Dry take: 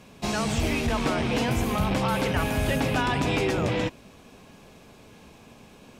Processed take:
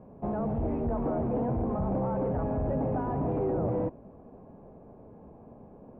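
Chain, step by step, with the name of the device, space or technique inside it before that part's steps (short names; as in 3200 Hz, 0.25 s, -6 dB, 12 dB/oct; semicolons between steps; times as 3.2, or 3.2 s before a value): overdriven synthesiser ladder filter (soft clip -25 dBFS, distortion -12 dB; ladder low-pass 940 Hz, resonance 25%); gain +6 dB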